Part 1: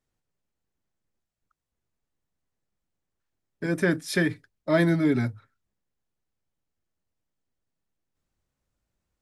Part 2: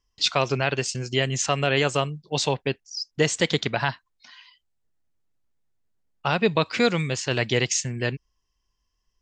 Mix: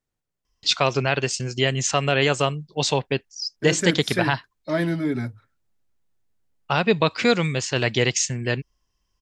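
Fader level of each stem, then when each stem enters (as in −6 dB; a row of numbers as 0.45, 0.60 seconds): −2.0, +2.0 decibels; 0.00, 0.45 seconds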